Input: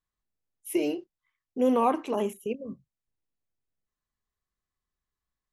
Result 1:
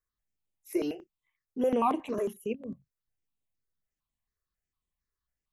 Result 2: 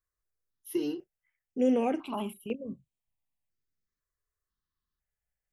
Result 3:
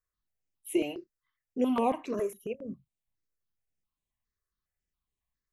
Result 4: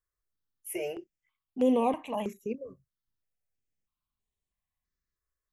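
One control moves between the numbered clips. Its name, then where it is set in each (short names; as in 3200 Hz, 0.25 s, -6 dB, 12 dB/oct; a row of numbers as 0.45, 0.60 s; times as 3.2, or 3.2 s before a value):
step phaser, rate: 11, 2, 7.3, 3.1 Hz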